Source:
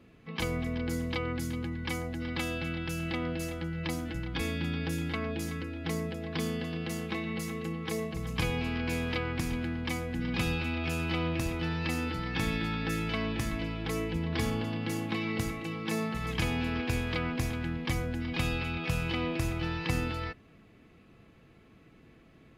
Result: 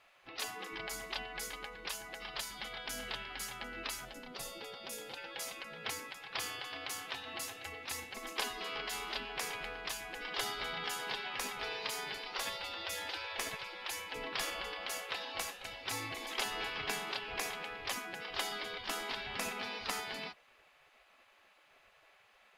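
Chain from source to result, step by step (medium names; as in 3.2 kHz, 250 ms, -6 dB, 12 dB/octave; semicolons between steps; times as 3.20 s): spectral gate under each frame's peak -15 dB weak; 4.05–5.17 s: peaking EQ 1.9 kHz -9 dB 2.2 oct; trim +2.5 dB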